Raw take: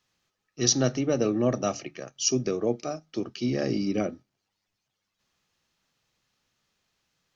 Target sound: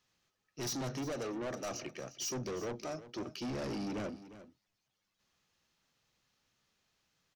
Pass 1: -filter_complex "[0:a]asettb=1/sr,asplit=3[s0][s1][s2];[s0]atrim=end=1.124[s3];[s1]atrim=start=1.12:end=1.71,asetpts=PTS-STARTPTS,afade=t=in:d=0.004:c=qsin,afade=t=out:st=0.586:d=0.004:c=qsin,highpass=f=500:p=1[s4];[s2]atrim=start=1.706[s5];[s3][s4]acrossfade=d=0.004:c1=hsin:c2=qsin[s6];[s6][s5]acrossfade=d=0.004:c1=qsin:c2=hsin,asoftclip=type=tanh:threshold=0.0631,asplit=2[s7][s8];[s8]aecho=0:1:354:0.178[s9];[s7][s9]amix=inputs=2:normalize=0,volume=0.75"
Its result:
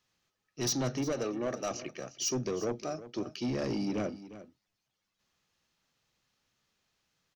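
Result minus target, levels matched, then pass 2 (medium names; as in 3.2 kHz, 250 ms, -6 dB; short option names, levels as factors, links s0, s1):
saturation: distortion -6 dB
-filter_complex "[0:a]asettb=1/sr,asplit=3[s0][s1][s2];[s0]atrim=end=1.124[s3];[s1]atrim=start=1.12:end=1.71,asetpts=PTS-STARTPTS,afade=t=in:d=0.004:c=qsin,afade=t=out:st=0.586:d=0.004:c=qsin,highpass=f=500:p=1[s4];[s2]atrim=start=1.706[s5];[s3][s4]acrossfade=d=0.004:c1=hsin:c2=qsin[s6];[s6][s5]acrossfade=d=0.004:c1=qsin:c2=hsin,asoftclip=type=tanh:threshold=0.0224,asplit=2[s7][s8];[s8]aecho=0:1:354:0.178[s9];[s7][s9]amix=inputs=2:normalize=0,volume=0.75"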